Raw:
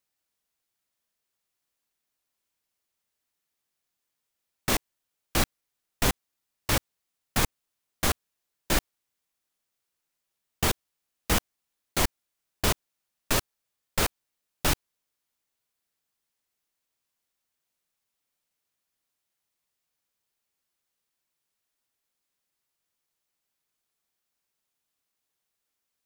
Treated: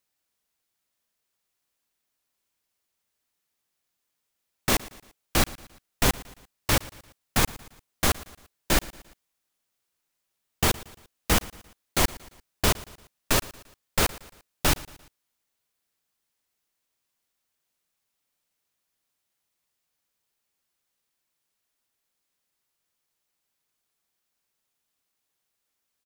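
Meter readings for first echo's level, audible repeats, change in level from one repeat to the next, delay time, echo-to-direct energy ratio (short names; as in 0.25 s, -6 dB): -20.0 dB, 3, -6.5 dB, 0.115 s, -19.0 dB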